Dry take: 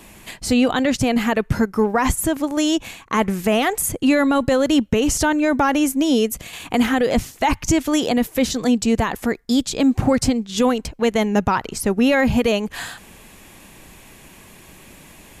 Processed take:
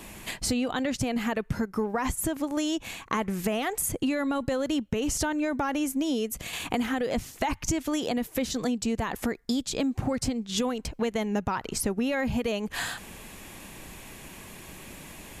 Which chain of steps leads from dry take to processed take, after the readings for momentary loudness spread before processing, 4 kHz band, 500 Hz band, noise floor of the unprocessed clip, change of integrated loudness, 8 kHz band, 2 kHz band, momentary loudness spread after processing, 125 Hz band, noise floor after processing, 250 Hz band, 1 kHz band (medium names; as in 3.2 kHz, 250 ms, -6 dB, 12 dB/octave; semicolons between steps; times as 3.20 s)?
5 LU, -8.0 dB, -10.5 dB, -46 dBFS, -10.0 dB, -6.5 dB, -9.5 dB, 16 LU, -9.0 dB, -50 dBFS, -10.0 dB, -10.0 dB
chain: compression 5:1, threshold -26 dBFS, peak gain reduction 12.5 dB